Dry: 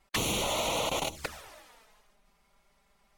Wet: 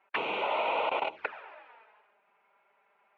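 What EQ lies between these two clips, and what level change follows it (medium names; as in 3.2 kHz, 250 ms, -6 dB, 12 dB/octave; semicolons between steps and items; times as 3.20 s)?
distance through air 120 m; cabinet simulation 420–2800 Hz, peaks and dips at 420 Hz +6 dB, 630 Hz +3 dB, 900 Hz +8 dB, 1.5 kHz +8 dB, 2.5 kHz +8 dB; -1.5 dB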